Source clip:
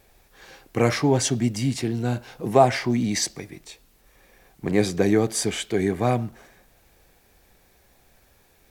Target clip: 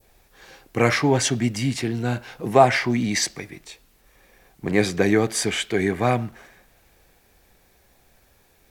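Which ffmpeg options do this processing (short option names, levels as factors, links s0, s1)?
-af "adynamicequalizer=threshold=0.01:dfrequency=1900:dqfactor=0.73:tfrequency=1900:tqfactor=0.73:attack=5:release=100:ratio=0.375:range=3.5:mode=boostabove:tftype=bell"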